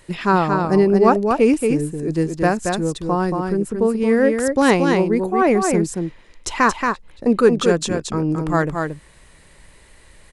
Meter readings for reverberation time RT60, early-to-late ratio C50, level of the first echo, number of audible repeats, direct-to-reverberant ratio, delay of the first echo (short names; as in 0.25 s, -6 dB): none, none, -4.5 dB, 1, none, 0.228 s